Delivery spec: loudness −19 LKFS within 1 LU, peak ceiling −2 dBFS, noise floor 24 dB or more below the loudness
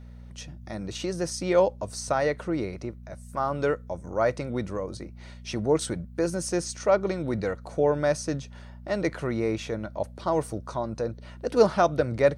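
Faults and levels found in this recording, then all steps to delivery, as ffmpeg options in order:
mains hum 60 Hz; hum harmonics up to 240 Hz; level of the hum −42 dBFS; integrated loudness −27.5 LKFS; sample peak −7.5 dBFS; target loudness −19.0 LKFS
→ -af "bandreject=frequency=60:width_type=h:width=4,bandreject=frequency=120:width_type=h:width=4,bandreject=frequency=180:width_type=h:width=4,bandreject=frequency=240:width_type=h:width=4"
-af "volume=8.5dB,alimiter=limit=-2dB:level=0:latency=1"

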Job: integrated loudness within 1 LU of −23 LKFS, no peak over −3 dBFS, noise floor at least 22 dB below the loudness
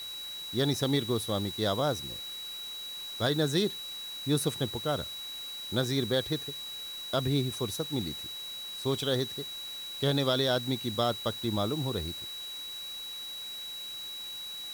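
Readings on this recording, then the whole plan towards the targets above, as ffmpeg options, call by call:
interfering tone 3,900 Hz; level of the tone −38 dBFS; background noise floor −40 dBFS; target noise floor −54 dBFS; integrated loudness −31.5 LKFS; sample peak −15.0 dBFS; target loudness −23.0 LKFS
→ -af "bandreject=frequency=3900:width=30"
-af "afftdn=noise_reduction=14:noise_floor=-40"
-af "volume=8.5dB"

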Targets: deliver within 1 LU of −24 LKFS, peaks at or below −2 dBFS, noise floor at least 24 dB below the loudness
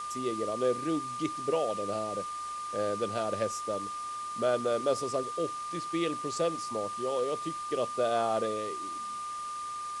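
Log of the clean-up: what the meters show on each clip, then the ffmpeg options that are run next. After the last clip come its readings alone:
interfering tone 1,200 Hz; level of the tone −35 dBFS; background noise floor −38 dBFS; target noise floor −57 dBFS; integrated loudness −32.5 LKFS; sample peak −16.0 dBFS; target loudness −24.0 LKFS
→ -af "bandreject=frequency=1200:width=30"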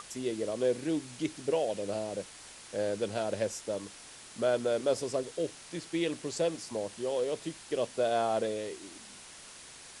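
interfering tone none found; background noise floor −50 dBFS; target noise floor −57 dBFS
→ -af "afftdn=noise_reduction=7:noise_floor=-50"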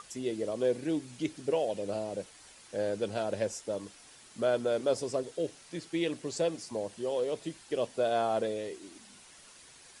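background noise floor −55 dBFS; target noise floor −57 dBFS
→ -af "afftdn=noise_reduction=6:noise_floor=-55"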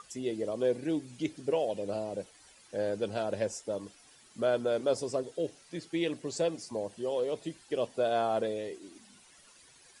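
background noise floor −59 dBFS; integrated loudness −33.0 LKFS; sample peak −17.0 dBFS; target loudness −24.0 LKFS
→ -af "volume=9dB"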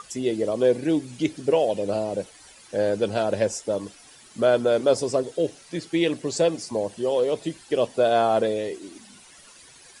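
integrated loudness −24.0 LKFS; sample peak −8.0 dBFS; background noise floor −50 dBFS

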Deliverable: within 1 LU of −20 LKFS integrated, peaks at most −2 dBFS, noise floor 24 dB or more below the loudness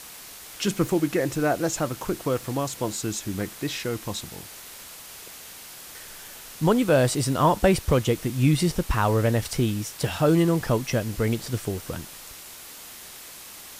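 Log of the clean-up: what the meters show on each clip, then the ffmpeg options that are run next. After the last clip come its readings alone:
background noise floor −43 dBFS; target noise floor −49 dBFS; integrated loudness −24.5 LKFS; sample peak −7.5 dBFS; target loudness −20.0 LKFS
→ -af "afftdn=noise_reduction=6:noise_floor=-43"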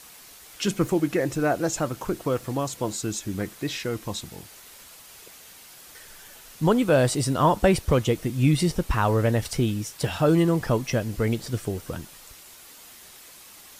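background noise floor −48 dBFS; target noise floor −49 dBFS
→ -af "afftdn=noise_reduction=6:noise_floor=-48"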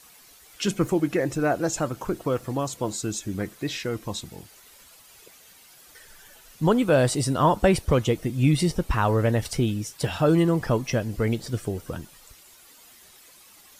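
background noise floor −52 dBFS; integrated loudness −24.5 LKFS; sample peak −8.0 dBFS; target loudness −20.0 LKFS
→ -af "volume=4.5dB"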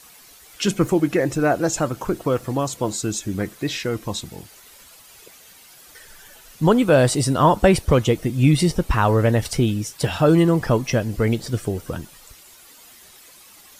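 integrated loudness −20.0 LKFS; sample peak −3.5 dBFS; background noise floor −48 dBFS

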